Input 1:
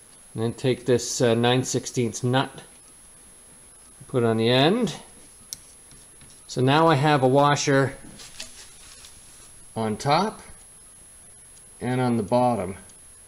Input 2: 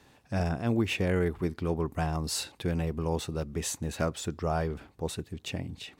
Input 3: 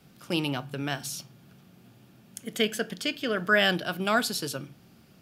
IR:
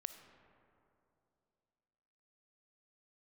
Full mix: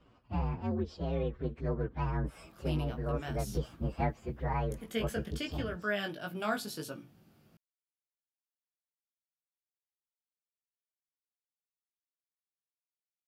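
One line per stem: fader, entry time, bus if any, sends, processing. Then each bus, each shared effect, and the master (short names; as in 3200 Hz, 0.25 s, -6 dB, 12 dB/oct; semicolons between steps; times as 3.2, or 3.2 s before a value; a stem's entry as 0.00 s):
off
-1.5 dB, 0.00 s, no send, inharmonic rescaling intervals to 127%; LPF 4100 Hz 12 dB/oct
-7.0 dB, 2.35 s, no send, high shelf 10000 Hz +10 dB; chorus 1.5 Hz, delay 17.5 ms, depth 2.2 ms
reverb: off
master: high shelf 2600 Hz -9 dB; vocal rider 0.5 s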